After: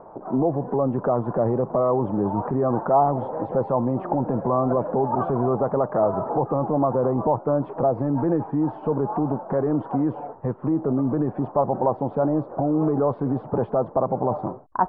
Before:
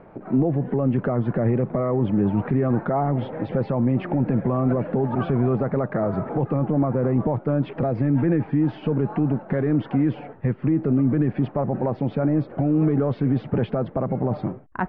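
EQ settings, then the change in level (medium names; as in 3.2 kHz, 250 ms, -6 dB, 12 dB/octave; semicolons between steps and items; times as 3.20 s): FFT filter 200 Hz 0 dB, 1 kHz +15 dB, 2.2 kHz -13 dB; -5.5 dB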